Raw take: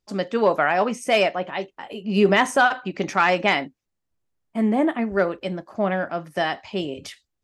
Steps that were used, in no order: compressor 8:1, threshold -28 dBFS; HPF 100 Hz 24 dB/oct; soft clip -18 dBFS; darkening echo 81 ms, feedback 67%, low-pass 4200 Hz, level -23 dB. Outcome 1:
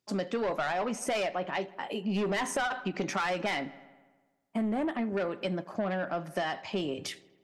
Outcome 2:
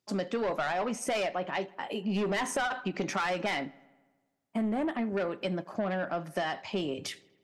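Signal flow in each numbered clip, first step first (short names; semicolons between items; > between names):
HPF > soft clip > darkening echo > compressor; HPF > soft clip > compressor > darkening echo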